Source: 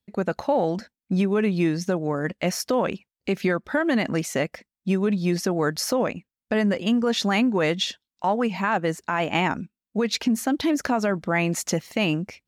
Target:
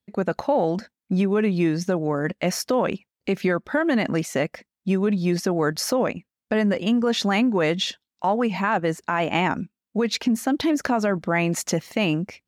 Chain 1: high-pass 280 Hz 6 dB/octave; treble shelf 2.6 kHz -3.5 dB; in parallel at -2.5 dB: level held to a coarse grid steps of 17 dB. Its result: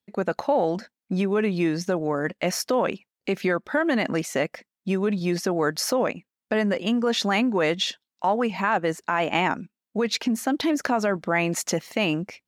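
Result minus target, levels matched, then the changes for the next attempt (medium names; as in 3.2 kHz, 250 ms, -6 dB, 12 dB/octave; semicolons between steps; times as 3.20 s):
125 Hz band -3.0 dB
change: high-pass 74 Hz 6 dB/octave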